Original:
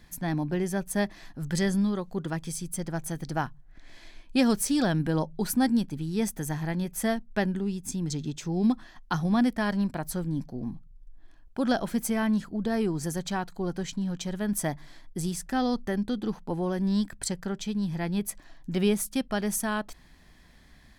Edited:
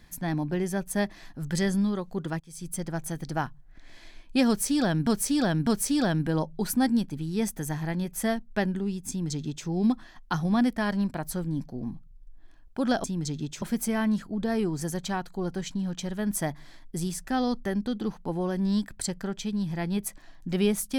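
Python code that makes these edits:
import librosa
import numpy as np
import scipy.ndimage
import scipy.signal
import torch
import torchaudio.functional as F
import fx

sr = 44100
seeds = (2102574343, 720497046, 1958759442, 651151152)

y = fx.edit(x, sr, fx.fade_in_from(start_s=2.4, length_s=0.27, curve='qua', floor_db=-19.0),
    fx.repeat(start_s=4.47, length_s=0.6, count=3),
    fx.duplicate(start_s=7.89, length_s=0.58, to_s=11.84), tone=tone)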